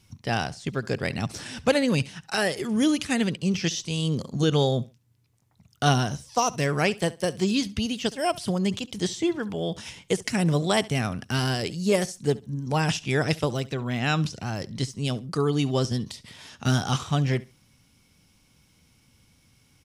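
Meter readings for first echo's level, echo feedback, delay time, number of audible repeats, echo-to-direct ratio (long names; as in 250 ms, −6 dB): −20.5 dB, 21%, 69 ms, 2, −20.5 dB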